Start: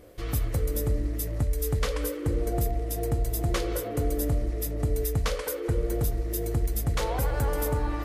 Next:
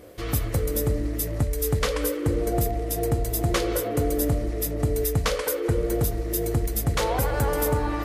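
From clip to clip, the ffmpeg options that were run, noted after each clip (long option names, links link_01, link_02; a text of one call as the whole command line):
ffmpeg -i in.wav -af "highpass=frequency=87:poles=1,volume=5.5dB" out.wav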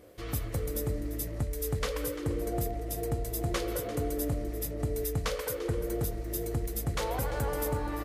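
ffmpeg -i in.wav -af "aecho=1:1:344:0.2,volume=-8dB" out.wav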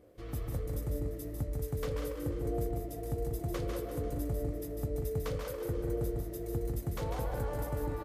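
ffmpeg -i in.wav -af "tiltshelf=frequency=1100:gain=4.5,aecho=1:1:148.7|189.5:0.562|0.447,volume=-8.5dB" out.wav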